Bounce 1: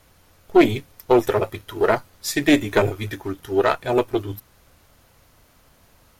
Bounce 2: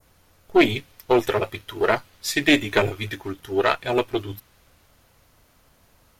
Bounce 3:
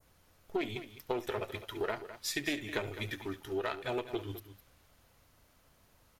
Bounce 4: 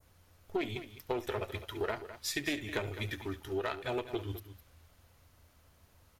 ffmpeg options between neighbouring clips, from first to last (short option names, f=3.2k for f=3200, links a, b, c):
-af "adynamicequalizer=threshold=0.0126:dfrequency=2900:dqfactor=0.79:tfrequency=2900:tqfactor=0.79:attack=5:release=100:ratio=0.375:range=4:mode=boostabove:tftype=bell,volume=-3dB"
-filter_complex "[0:a]acompressor=threshold=-24dB:ratio=6,asplit=2[a][b];[b]aecho=0:1:71|208:0.133|0.237[c];[a][c]amix=inputs=2:normalize=0,volume=-7.5dB"
-af "equalizer=f=81:w=3.6:g=12,asoftclip=type=hard:threshold=-21.5dB"